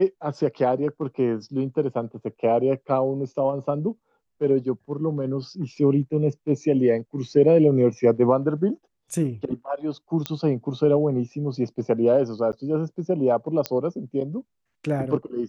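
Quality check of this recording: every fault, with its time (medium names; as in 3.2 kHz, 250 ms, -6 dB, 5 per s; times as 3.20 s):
10.26 s: pop -10 dBFS
12.52–12.53 s: dropout 9.2 ms
13.66 s: pop -9 dBFS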